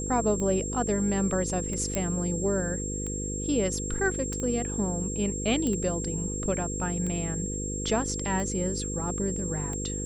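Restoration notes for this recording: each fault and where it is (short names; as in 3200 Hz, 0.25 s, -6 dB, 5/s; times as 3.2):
buzz 50 Hz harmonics 10 -34 dBFS
tick 45 rpm -23 dBFS
tone 7500 Hz -34 dBFS
1.95 pop -14 dBFS
4.33 pop -22 dBFS
5.67 pop -18 dBFS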